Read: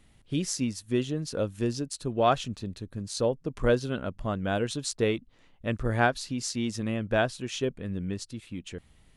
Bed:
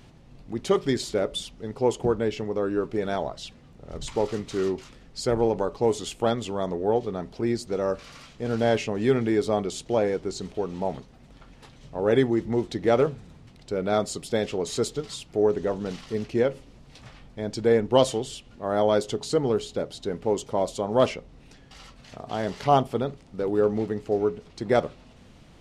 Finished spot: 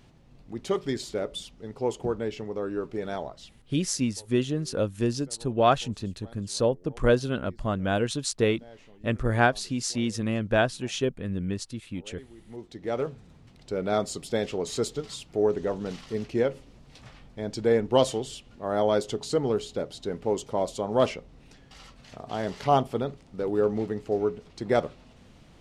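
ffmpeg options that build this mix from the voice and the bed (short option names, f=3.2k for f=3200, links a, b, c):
-filter_complex "[0:a]adelay=3400,volume=2.5dB[a];[1:a]volume=20dB,afade=t=out:st=3.17:d=0.63:silence=0.0794328,afade=t=in:st=12.37:d=1.34:silence=0.0562341[b];[a][b]amix=inputs=2:normalize=0"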